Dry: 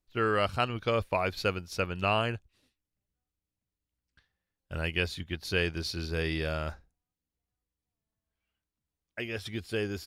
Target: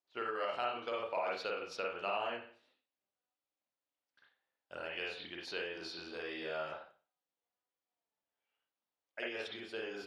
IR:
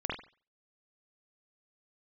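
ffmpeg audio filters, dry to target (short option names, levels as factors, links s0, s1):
-filter_complex "[0:a]equalizer=f=2000:w=0.62:g=-10.5,bandreject=f=1100:w=26[s0];[1:a]atrim=start_sample=2205[s1];[s0][s1]afir=irnorm=-1:irlink=0,alimiter=limit=0.112:level=0:latency=1:release=102,acompressor=threshold=0.0251:ratio=6,highpass=730,lowpass=4100,volume=1.68"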